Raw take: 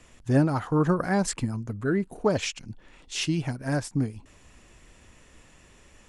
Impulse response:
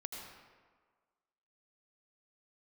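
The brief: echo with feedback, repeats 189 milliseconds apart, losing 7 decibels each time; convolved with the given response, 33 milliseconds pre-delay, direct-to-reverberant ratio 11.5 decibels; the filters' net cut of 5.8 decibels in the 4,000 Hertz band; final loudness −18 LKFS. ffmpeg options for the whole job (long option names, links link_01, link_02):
-filter_complex "[0:a]equalizer=frequency=4000:width_type=o:gain=-8.5,aecho=1:1:189|378|567|756|945:0.447|0.201|0.0905|0.0407|0.0183,asplit=2[link_01][link_02];[1:a]atrim=start_sample=2205,adelay=33[link_03];[link_02][link_03]afir=irnorm=-1:irlink=0,volume=-10dB[link_04];[link_01][link_04]amix=inputs=2:normalize=0,volume=8dB"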